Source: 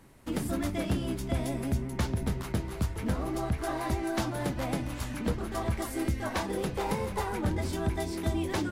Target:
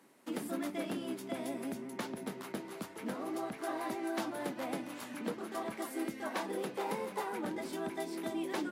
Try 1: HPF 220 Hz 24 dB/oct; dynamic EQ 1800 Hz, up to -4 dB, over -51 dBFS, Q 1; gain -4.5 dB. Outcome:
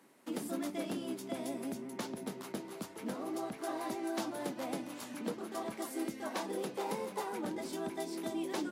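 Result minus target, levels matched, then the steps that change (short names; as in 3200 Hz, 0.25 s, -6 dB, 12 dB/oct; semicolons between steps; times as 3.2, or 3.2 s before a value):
2000 Hz band -3.0 dB
change: dynamic EQ 6200 Hz, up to -4 dB, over -51 dBFS, Q 1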